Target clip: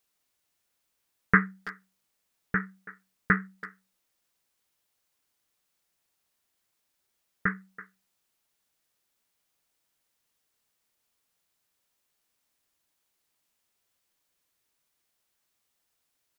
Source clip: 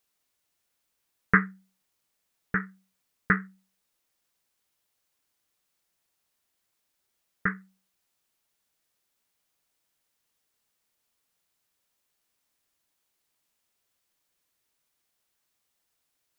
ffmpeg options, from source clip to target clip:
-filter_complex "[0:a]asplit=2[s0][s1];[s1]adelay=330,highpass=300,lowpass=3400,asoftclip=type=hard:threshold=0.224,volume=0.158[s2];[s0][s2]amix=inputs=2:normalize=0"

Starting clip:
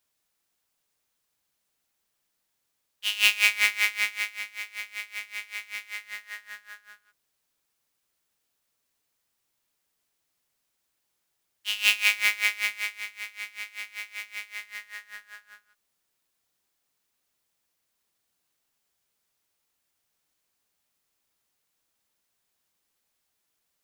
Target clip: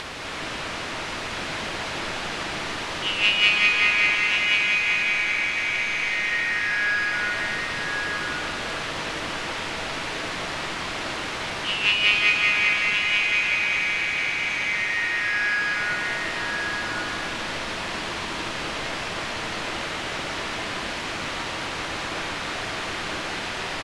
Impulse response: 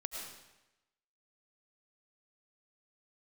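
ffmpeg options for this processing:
-filter_complex "[0:a]aeval=exprs='val(0)+0.5*0.0891*sgn(val(0))':c=same,aecho=1:1:1080:0.562[s0];[1:a]atrim=start_sample=2205,asetrate=22050,aresample=44100[s1];[s0][s1]afir=irnorm=-1:irlink=0,acompressor=mode=upward:threshold=0.0447:ratio=2.5,lowpass=2800"

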